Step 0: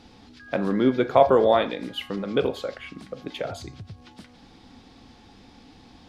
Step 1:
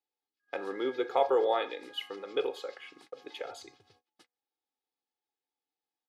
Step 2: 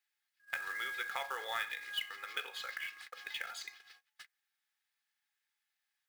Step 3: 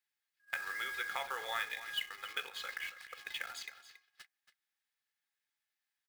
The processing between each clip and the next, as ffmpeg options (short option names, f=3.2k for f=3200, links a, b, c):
-af "agate=range=-35dB:threshold=-42dB:ratio=16:detection=peak,highpass=420,aecho=1:1:2.4:0.69,volume=-8.5dB"
-af "highpass=f=1.7k:t=q:w=3.2,acrusher=bits=3:mode=log:mix=0:aa=0.000001,acompressor=threshold=-47dB:ratio=2,volume=5.5dB"
-filter_complex "[0:a]asplit=2[a][b];[b]aeval=exprs='val(0)*gte(abs(val(0)),0.00668)':c=same,volume=-4dB[c];[a][c]amix=inputs=2:normalize=0,aecho=1:1:278:0.2,volume=-4dB"